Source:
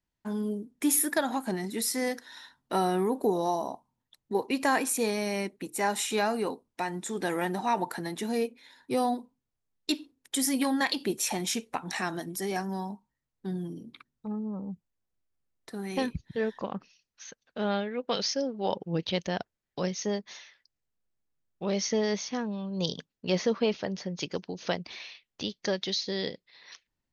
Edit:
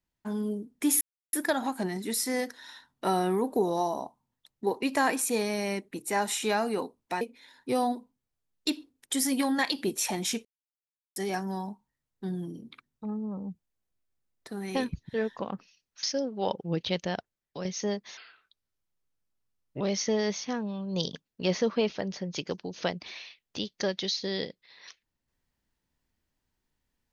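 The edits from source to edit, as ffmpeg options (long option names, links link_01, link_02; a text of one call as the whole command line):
ffmpeg -i in.wav -filter_complex "[0:a]asplit=9[link_01][link_02][link_03][link_04][link_05][link_06][link_07][link_08][link_09];[link_01]atrim=end=1.01,asetpts=PTS-STARTPTS,afade=type=out:start_time=1.006:duration=0.004:curve=hsin,apad=pad_dur=0.32[link_10];[link_02]atrim=start=1.01:end=6.892,asetpts=PTS-STARTPTS,afade=type=in:duration=0.004:curve=hsin[link_11];[link_03]atrim=start=8.428:end=11.67,asetpts=PTS-STARTPTS,afade=type=out:start_time=3.238:duration=0.004:curve=hsin[link_12];[link_04]atrim=start=11.67:end=12.38,asetpts=PTS-STARTPTS,volume=0[link_13];[link_05]atrim=start=12.38:end=17.252,asetpts=PTS-STARTPTS,afade=type=in:duration=0.004:curve=hsin[link_14];[link_06]atrim=start=18.248:end=19.87,asetpts=PTS-STARTPTS,afade=type=out:start_time=1.012:duration=0.61:silence=0.446684[link_15];[link_07]atrim=start=19.87:end=20.394,asetpts=PTS-STARTPTS,afade=type=in:duration=0.004:curve=hsin:silence=0.446684[link_16];[link_08]atrim=start=20.39:end=21.65,asetpts=PTS-STARTPTS,asetrate=33957,aresample=44100[link_17];[link_09]atrim=start=21.646[link_18];[link_10][link_11]concat=n=2:v=0:a=1[link_19];[link_12][link_13][link_14]concat=n=3:v=0:a=1[link_20];[link_19][link_20]acrossfade=duration=0.004:curve1=hsin:curve2=hsin[link_21];[link_15][link_16]concat=n=2:v=0:a=1[link_22];[link_21][link_22]acrossfade=duration=0.004:curve1=hsin:curve2=hsin[link_23];[link_23][link_17]acrossfade=duration=0.004:curve1=hsin:curve2=hsin[link_24];[link_24][link_18]acrossfade=duration=0.004:curve1=hsin:curve2=hsin" out.wav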